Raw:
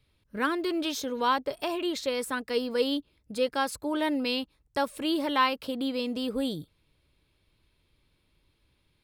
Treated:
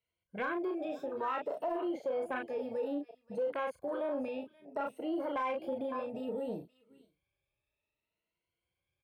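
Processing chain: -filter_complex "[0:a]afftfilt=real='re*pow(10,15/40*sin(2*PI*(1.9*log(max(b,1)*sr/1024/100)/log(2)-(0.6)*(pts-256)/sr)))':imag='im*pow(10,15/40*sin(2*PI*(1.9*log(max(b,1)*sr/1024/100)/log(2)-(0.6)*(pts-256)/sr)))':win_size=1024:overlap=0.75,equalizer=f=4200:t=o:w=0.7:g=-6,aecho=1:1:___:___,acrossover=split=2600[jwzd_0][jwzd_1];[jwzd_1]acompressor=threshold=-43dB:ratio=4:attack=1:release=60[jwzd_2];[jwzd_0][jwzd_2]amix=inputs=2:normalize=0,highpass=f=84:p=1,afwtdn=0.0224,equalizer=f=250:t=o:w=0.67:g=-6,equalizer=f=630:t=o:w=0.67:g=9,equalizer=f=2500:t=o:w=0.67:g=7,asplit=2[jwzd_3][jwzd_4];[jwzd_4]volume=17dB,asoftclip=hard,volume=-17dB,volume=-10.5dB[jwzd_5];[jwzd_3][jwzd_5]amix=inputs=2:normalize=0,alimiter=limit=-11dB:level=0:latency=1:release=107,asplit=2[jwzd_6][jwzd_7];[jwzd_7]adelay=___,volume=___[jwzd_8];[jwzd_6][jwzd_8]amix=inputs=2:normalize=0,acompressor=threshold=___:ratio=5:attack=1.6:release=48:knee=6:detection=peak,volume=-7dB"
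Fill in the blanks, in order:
528, 0.119, 35, -5.5dB, -24dB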